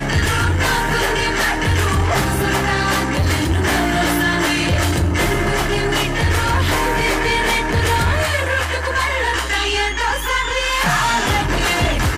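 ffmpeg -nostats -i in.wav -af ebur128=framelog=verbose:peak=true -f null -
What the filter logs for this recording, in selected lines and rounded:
Integrated loudness:
  I:         -17.2 LUFS
  Threshold: -27.2 LUFS
Loudness range:
  LRA:         0.6 LU
  Threshold: -37.3 LUFS
  LRA low:   -17.7 LUFS
  LRA high:  -17.0 LUFS
True peak:
  Peak:       -9.7 dBFS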